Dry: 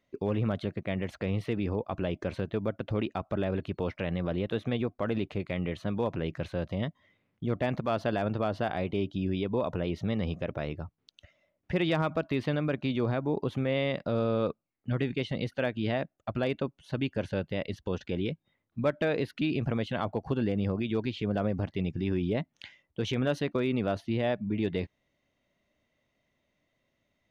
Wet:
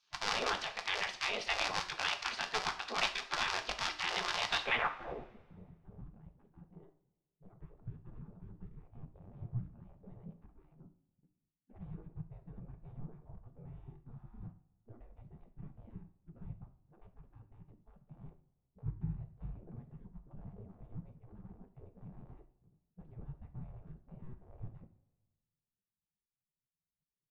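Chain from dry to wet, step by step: cycle switcher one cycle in 3, inverted; spectral gate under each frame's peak -15 dB weak; low-pass sweep 5100 Hz -> 150 Hz, 4.56–5.37; two-slope reverb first 0.42 s, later 1.5 s, from -16 dB, DRR 6 dB; gain +5.5 dB

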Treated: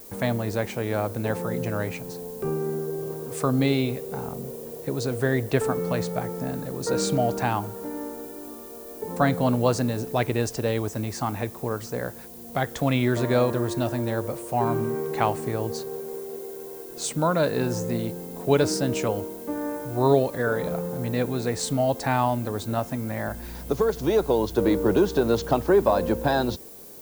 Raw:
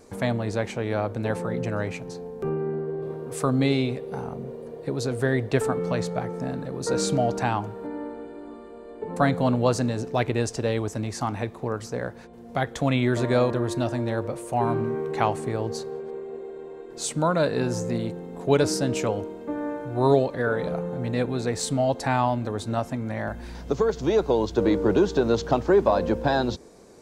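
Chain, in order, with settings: added noise violet -45 dBFS

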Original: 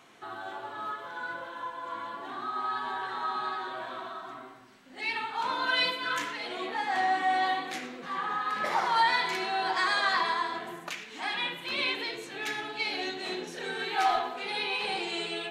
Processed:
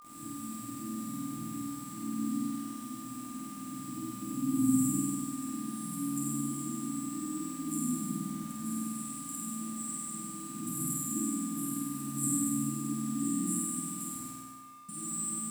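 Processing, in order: recorder AGC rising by 66 dB/s; 14.15–14.89 gate with hold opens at -18 dBFS; FFT band-reject 330–7200 Hz; weighting filter D; in parallel at -2 dB: limiter -35 dBFS, peak gain reduction 11.5 dB; on the sum: bit-crush 9-bit; flutter echo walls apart 8.5 m, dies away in 1.4 s; on a send at -8 dB: reverb RT60 0.55 s, pre-delay 69 ms; on the sum: whine 1200 Hz -51 dBFS; lo-fi delay 85 ms, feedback 35%, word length 9-bit, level -6.5 dB

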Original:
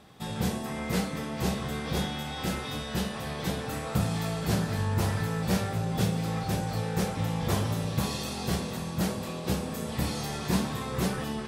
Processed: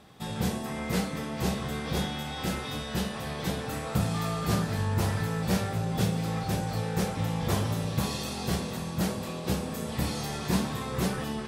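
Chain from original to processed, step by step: 4.13–4.61 whine 1200 Hz -36 dBFS

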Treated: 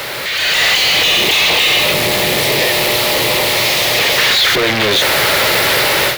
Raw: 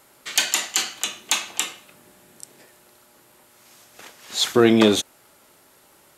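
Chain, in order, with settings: infinite clipping; 0.77–4.18 bell 1500 Hz -10 dB 0.5 oct; AGC gain up to 17 dB; graphic EQ 125/250/500/2000/4000/8000 Hz +7/-6/+9/+10/+9/-7 dB; three-band squash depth 40%; gain -9.5 dB

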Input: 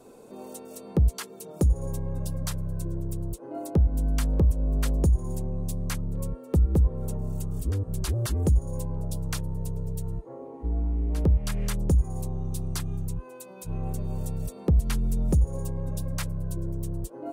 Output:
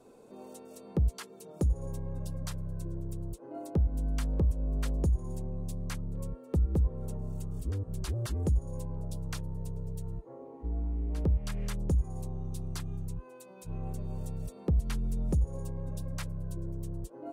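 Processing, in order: high shelf 10000 Hz -8.5 dB; gain -6 dB

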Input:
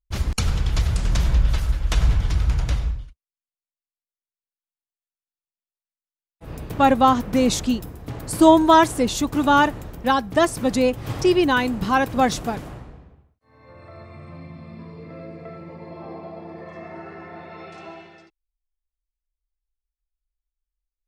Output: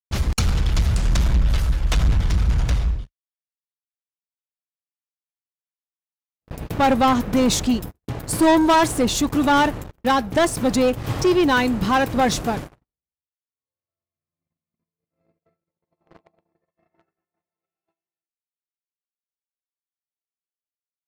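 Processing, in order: gate -33 dBFS, range -41 dB; sample leveller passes 3; gain -7.5 dB

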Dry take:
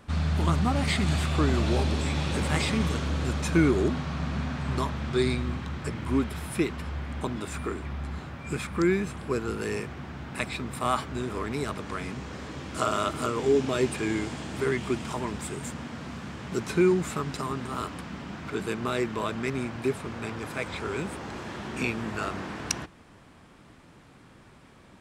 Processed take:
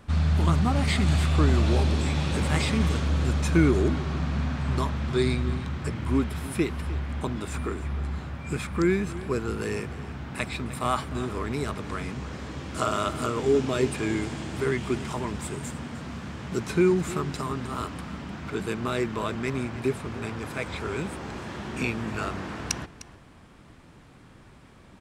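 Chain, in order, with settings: low shelf 100 Hz +7 dB; echo 0.304 s -16.5 dB

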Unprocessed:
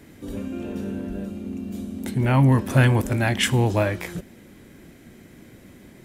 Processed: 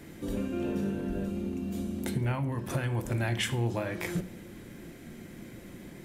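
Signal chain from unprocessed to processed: compressor 16:1, threshold -27 dBFS, peak gain reduction 16 dB; reverb RT60 0.70 s, pre-delay 6 ms, DRR 9.5 dB

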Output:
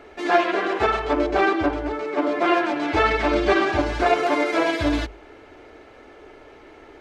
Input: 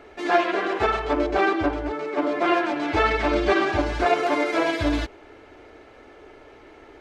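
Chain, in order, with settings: notches 50/100/150 Hz; gain +1.5 dB

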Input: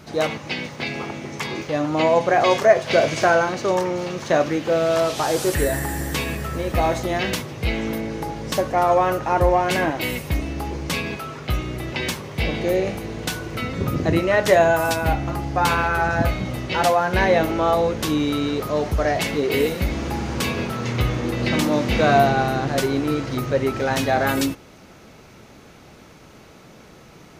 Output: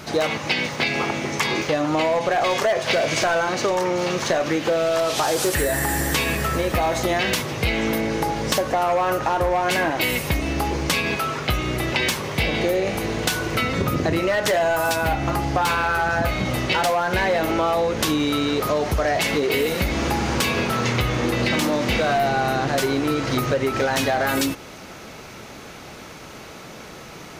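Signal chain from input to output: low shelf 430 Hz -6.5 dB; in parallel at +1.5 dB: limiter -16 dBFS, peak gain reduction 11 dB; on the sum: overloaded stage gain 11 dB; compressor, threshold -21 dBFS, peak gain reduction 8.5 dB; gain +3 dB

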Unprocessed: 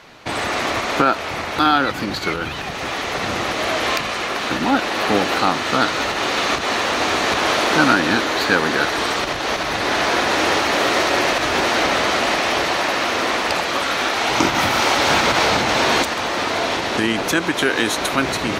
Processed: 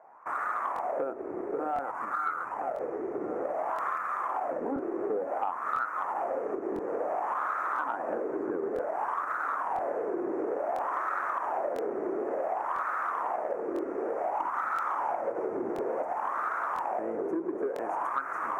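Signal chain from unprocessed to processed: HPF 100 Hz 12 dB/oct; notches 50/100/150/200/250/300 Hz; on a send: echo with dull and thin repeats by turns 0.538 s, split 1800 Hz, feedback 88%, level -10 dB; on the sum: wah 0.56 Hz 360–1300 Hz, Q 5.1; in parallel at -5.5 dB: crossover distortion -45.5 dBFS; on the sum: Butterworth band-stop 3700 Hz, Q 0.62; compressor, threshold -28 dBFS, peak gain reduction 12 dB; crackling interface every 1.00 s, samples 1024, repeat, from 0.74; core saturation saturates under 520 Hz

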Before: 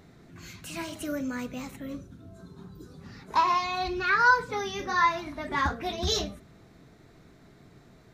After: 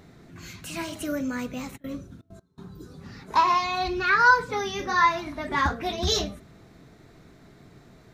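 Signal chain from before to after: 1.76–2.76 step gate ".x..xxxx" 163 bpm -24 dB; gain +3 dB

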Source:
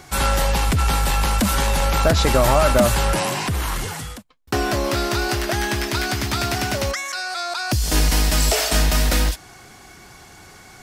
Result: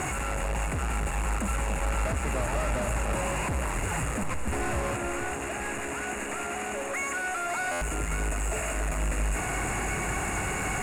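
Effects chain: infinite clipping; 4.96–7.49 HPF 230 Hz 24 dB/oct; FFT band-reject 2900–6500 Hz; LPF 8900 Hz 24 dB/oct; limiter -18 dBFS, peak gain reduction 6 dB; soft clip -20.5 dBFS, distortion -22 dB; echo with dull and thin repeats by turns 0.279 s, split 880 Hz, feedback 80%, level -7 dB; stuck buffer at 7.71, samples 512, times 8; gain -5.5 dB

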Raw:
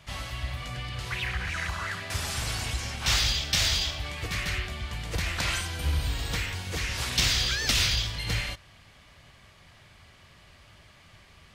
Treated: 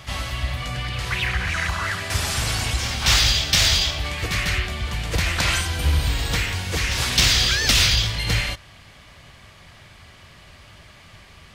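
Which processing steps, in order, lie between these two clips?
overloaded stage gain 16.5 dB; reverse echo 0.264 s -14.5 dB; gain +7.5 dB

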